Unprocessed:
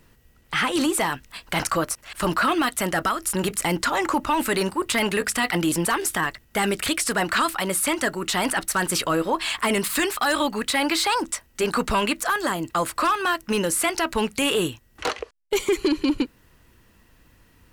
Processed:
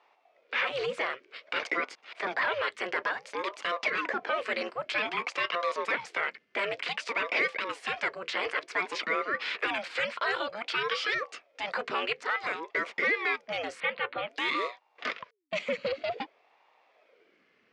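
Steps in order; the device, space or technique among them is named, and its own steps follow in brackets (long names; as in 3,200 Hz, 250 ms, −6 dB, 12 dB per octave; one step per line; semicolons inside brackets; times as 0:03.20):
0:13.80–0:14.29: elliptic low-pass filter 3,800 Hz, stop band 40 dB
voice changer toy (ring modulator whose carrier an LFO sweeps 510 Hz, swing 70%, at 0.54 Hz; loudspeaker in its box 450–4,500 Hz, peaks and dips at 450 Hz +3 dB, 840 Hz −7 dB, 2,200 Hz +5 dB, 3,800 Hz −4 dB)
level −3.5 dB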